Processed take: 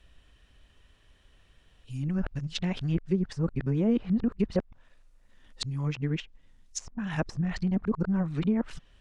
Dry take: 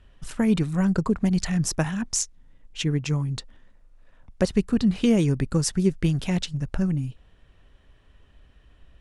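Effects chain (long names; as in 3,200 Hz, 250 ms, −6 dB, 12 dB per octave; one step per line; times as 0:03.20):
played backwards from end to start
high-shelf EQ 2,300 Hz +11 dB
treble cut that deepens with the level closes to 1,000 Hz, closed at −17 dBFS
level −5.5 dB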